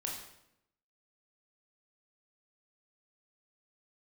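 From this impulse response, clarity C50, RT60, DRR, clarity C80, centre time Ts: 4.0 dB, 0.80 s, -2.0 dB, 7.0 dB, 42 ms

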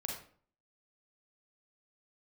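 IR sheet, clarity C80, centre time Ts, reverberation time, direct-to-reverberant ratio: 8.0 dB, 36 ms, 0.50 s, -0.5 dB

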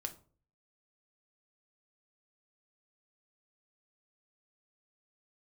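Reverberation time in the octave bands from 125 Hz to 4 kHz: 0.65 s, 0.55 s, 0.50 s, 0.40 s, 0.30 s, 0.25 s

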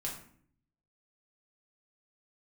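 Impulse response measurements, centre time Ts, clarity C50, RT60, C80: 29 ms, 6.5 dB, 0.55 s, 10.0 dB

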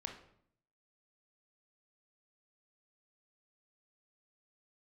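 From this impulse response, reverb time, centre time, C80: 0.65 s, 22 ms, 11.0 dB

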